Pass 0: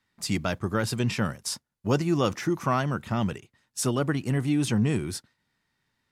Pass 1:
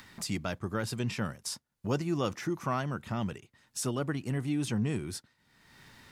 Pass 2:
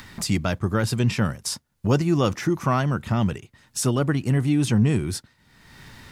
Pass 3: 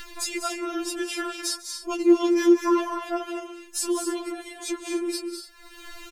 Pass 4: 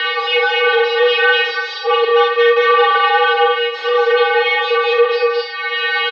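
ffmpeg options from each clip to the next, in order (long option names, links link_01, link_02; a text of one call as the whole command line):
ffmpeg -i in.wav -af "acompressor=mode=upward:threshold=-26dB:ratio=2.5,volume=-6.5dB" out.wav
ffmpeg -i in.wav -af "lowshelf=frequency=120:gain=8.5,volume=8.5dB" out.wav
ffmpeg -i in.wav -filter_complex "[0:a]acompressor=threshold=-37dB:ratio=1.5,asplit=2[link_01][link_02];[link_02]aecho=0:1:145|198|238|288:0.106|0.355|0.376|0.188[link_03];[link_01][link_03]amix=inputs=2:normalize=0,afftfilt=real='re*4*eq(mod(b,16),0)':imag='im*4*eq(mod(b,16),0)':win_size=2048:overlap=0.75,volume=6.5dB" out.wav
ffmpeg -i in.wav -filter_complex "[0:a]asplit=2[link_01][link_02];[link_02]highpass=frequency=720:poles=1,volume=39dB,asoftclip=type=tanh:threshold=-8dB[link_03];[link_01][link_03]amix=inputs=2:normalize=0,lowpass=frequency=2900:poles=1,volume=-6dB,highpass=frequency=160:width_type=q:width=0.5412,highpass=frequency=160:width_type=q:width=1.307,lowpass=frequency=3600:width_type=q:width=0.5176,lowpass=frequency=3600:width_type=q:width=0.7071,lowpass=frequency=3600:width_type=q:width=1.932,afreqshift=130,aecho=1:1:43|68:0.631|0.447,volume=1dB" out.wav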